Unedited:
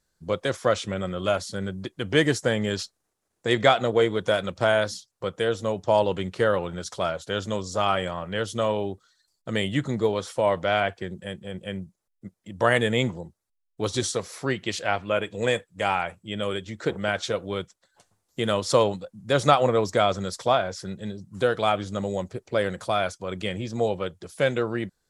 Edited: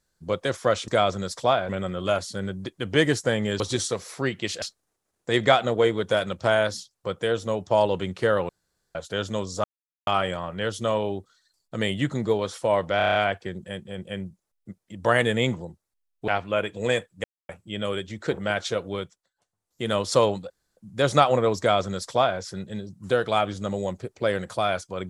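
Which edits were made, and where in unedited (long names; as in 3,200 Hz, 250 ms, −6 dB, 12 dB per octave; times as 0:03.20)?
0:06.66–0:07.12: fill with room tone
0:07.81: splice in silence 0.43 s
0:10.71: stutter 0.03 s, 7 plays
0:13.84–0:14.86: move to 0:02.79
0:15.82–0:16.07: silence
0:17.50–0:18.54: duck −16 dB, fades 0.41 s
0:19.08: splice in room tone 0.27 s
0:19.90–0:20.71: duplicate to 0:00.88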